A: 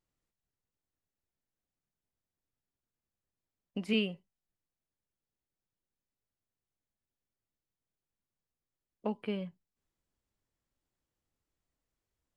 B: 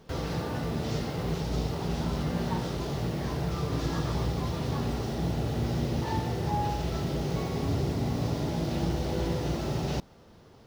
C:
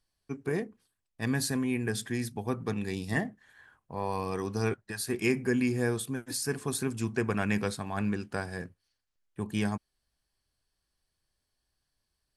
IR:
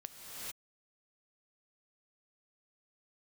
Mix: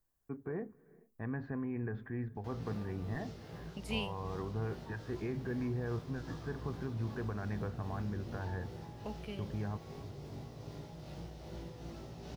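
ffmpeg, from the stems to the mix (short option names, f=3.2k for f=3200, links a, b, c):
-filter_complex "[0:a]aemphasis=mode=production:type=75fm,volume=-8.5dB[a];[1:a]flanger=delay=17.5:depth=2.3:speed=0.19,tremolo=f=2.5:d=0.31,adelay=2350,volume=-13dB[b];[2:a]lowpass=f=1.6k:w=0.5412,lowpass=f=1.6k:w=1.3066,asubboost=boost=5.5:cutoff=83,alimiter=level_in=4dB:limit=-24dB:level=0:latency=1:release=67,volume=-4dB,volume=-3dB,asplit=2[c][d];[d]volume=-19.5dB[e];[3:a]atrim=start_sample=2205[f];[e][f]afir=irnorm=-1:irlink=0[g];[a][b][c][g]amix=inputs=4:normalize=0"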